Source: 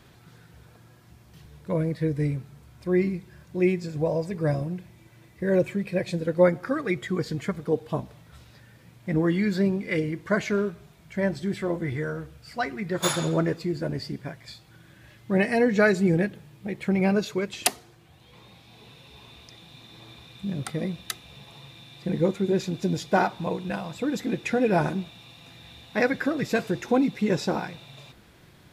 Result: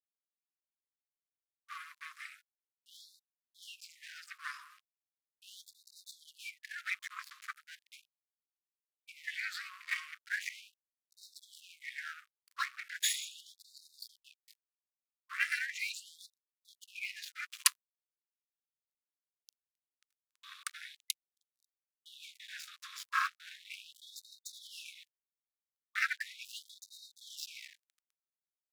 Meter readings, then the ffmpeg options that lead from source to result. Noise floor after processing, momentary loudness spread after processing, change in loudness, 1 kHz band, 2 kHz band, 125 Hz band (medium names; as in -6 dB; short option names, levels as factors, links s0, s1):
under -85 dBFS, 21 LU, -12.5 dB, -13.5 dB, -7.0 dB, under -40 dB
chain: -af "aeval=exprs='sgn(val(0))*max(abs(val(0))-0.0141,0)':c=same,aeval=exprs='val(0)*sin(2*PI*160*n/s)':c=same,afftfilt=real='re*gte(b*sr/1024,990*pow(3700/990,0.5+0.5*sin(2*PI*0.38*pts/sr)))':imag='im*gte(b*sr/1024,990*pow(3700/990,0.5+0.5*sin(2*PI*0.38*pts/sr)))':win_size=1024:overlap=0.75,volume=1.12"